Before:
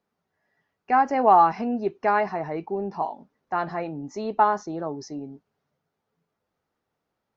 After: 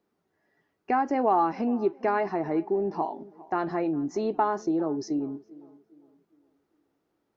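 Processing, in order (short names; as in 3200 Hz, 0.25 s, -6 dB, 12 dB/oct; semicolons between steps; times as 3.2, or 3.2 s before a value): bell 330 Hz +11.5 dB 0.68 oct; compressor 2:1, threshold -26 dBFS, peak gain reduction 8.5 dB; on a send: tape echo 0.407 s, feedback 42%, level -19 dB, low-pass 1100 Hz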